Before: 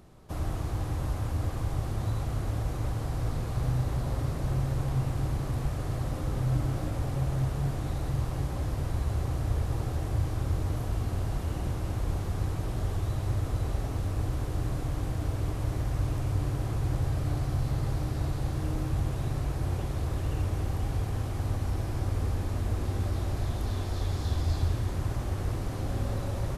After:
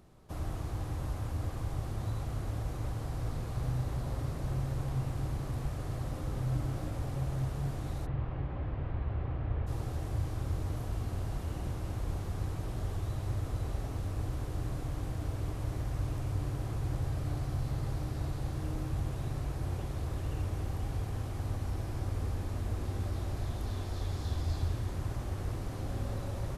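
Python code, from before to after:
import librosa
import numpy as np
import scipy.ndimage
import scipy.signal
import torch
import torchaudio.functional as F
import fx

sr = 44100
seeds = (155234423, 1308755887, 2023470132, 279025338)

y = fx.lowpass(x, sr, hz=2800.0, slope=24, at=(8.05, 9.66), fade=0.02)
y = F.gain(torch.from_numpy(y), -5.0).numpy()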